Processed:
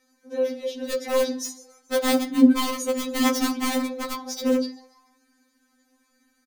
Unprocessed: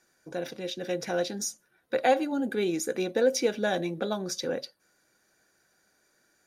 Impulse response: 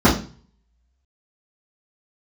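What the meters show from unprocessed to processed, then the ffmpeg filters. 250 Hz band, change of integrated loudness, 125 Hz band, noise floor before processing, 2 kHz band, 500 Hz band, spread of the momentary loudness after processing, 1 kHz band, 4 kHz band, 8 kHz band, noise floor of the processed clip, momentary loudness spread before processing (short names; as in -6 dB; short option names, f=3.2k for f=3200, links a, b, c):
+10.0 dB, +5.0 dB, under -10 dB, -70 dBFS, +2.5 dB, +1.5 dB, 14 LU, +2.5 dB, +5.5 dB, +3.5 dB, -68 dBFS, 11 LU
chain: -filter_complex "[0:a]asubboost=boost=2.5:cutoff=250,asplit=5[a][b][c][d][e];[b]adelay=144,afreqshift=150,volume=-18.5dB[f];[c]adelay=288,afreqshift=300,volume=-24.7dB[g];[d]adelay=432,afreqshift=450,volume=-30.9dB[h];[e]adelay=576,afreqshift=600,volume=-37.1dB[i];[a][f][g][h][i]amix=inputs=5:normalize=0,aeval=exprs='(mod(11.2*val(0)+1,2)-1)/11.2':c=same,asplit=2[j][k];[1:a]atrim=start_sample=2205[l];[k][l]afir=irnorm=-1:irlink=0,volume=-28.5dB[m];[j][m]amix=inputs=2:normalize=0,afftfilt=real='re*3.46*eq(mod(b,12),0)':imag='im*3.46*eq(mod(b,12),0)':win_size=2048:overlap=0.75,volume=2.5dB"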